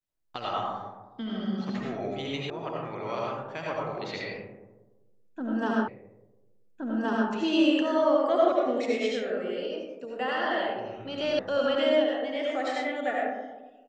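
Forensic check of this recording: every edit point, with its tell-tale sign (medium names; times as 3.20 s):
2.50 s: sound stops dead
5.88 s: repeat of the last 1.42 s
11.39 s: sound stops dead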